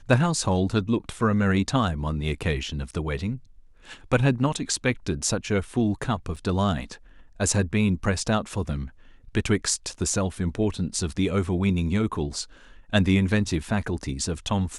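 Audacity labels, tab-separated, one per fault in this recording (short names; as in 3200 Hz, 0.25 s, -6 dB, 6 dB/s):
6.360000	6.370000	gap 5.6 ms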